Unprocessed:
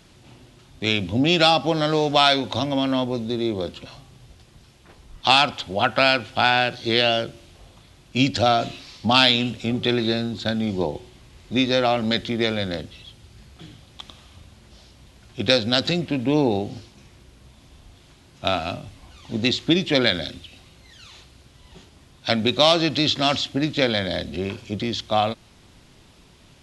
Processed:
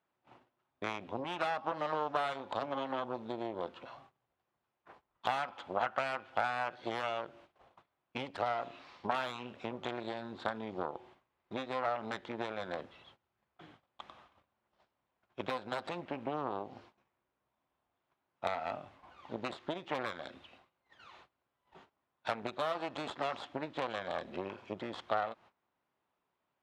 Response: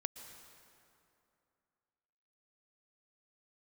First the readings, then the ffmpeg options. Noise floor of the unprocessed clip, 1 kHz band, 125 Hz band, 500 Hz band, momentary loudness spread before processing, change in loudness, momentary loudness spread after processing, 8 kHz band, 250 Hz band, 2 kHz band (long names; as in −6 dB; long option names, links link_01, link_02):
−52 dBFS, −12.0 dB, −23.0 dB, −15.0 dB, 13 LU, −17.5 dB, 14 LU, below −20 dB, −21.0 dB, −16.5 dB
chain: -filter_complex "[0:a]aeval=exprs='0.891*(cos(1*acos(clip(val(0)/0.891,-1,1)))-cos(1*PI/2))+0.01*(cos(3*acos(clip(val(0)/0.891,-1,1)))-cos(3*PI/2))+0.282*(cos(6*acos(clip(val(0)/0.891,-1,1)))-cos(6*PI/2))':channel_layout=same,acompressor=threshold=-23dB:ratio=6,bandpass=frequency=1000:width_type=q:width=1.2:csg=0,agate=range=-21dB:threshold=-57dB:ratio=16:detection=peak,asplit=2[link_01][link_02];[1:a]atrim=start_sample=2205,atrim=end_sample=3969,lowpass=3300[link_03];[link_02][link_03]afir=irnorm=-1:irlink=0,volume=-1dB[link_04];[link_01][link_04]amix=inputs=2:normalize=0,volume=-5dB"